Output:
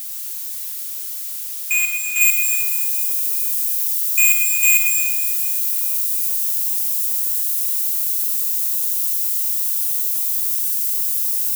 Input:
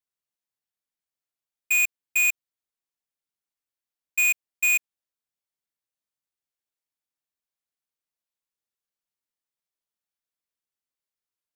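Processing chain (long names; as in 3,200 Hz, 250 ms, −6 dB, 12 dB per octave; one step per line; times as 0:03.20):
spike at every zero crossing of −28.5 dBFS
high-shelf EQ 6,100 Hz +3 dB, from 0:02.21 +11.5 dB
convolution reverb RT60 2.5 s, pre-delay 45 ms, DRR 1.5 dB
level +1.5 dB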